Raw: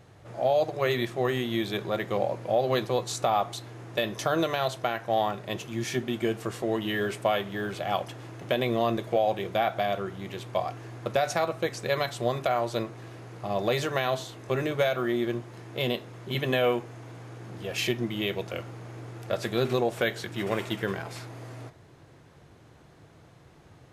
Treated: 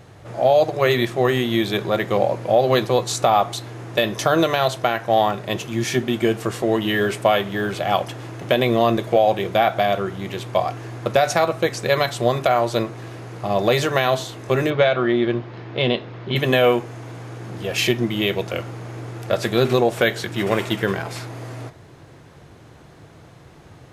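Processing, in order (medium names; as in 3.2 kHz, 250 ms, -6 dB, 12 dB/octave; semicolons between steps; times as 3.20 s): 14.70–16.36 s: low-pass 4.4 kHz 24 dB/octave; trim +8.5 dB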